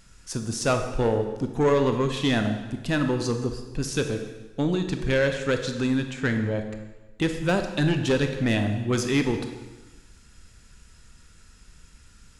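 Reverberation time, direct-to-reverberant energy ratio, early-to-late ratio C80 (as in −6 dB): 1.2 s, 6.0 dB, 9.5 dB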